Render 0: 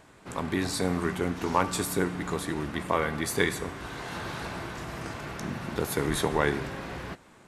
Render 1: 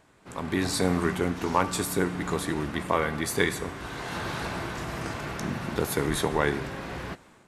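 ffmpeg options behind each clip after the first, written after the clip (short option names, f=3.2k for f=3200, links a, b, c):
-af "dynaudnorm=f=190:g=5:m=9dB,volume=-5.5dB"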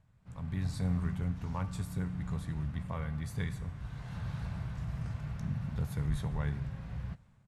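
-af "firequalizer=gain_entry='entry(130,0);entry(330,-28);entry(530,-20);entry(12000,-24)':delay=0.05:min_phase=1,volume=2.5dB"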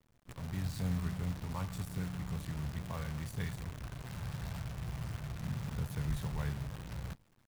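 -af "acrusher=bits=8:dc=4:mix=0:aa=0.000001,volume=-3dB"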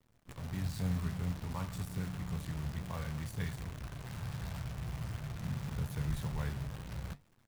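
-af "flanger=delay=7.3:depth=9:regen=-71:speed=0.95:shape=triangular,volume=4.5dB"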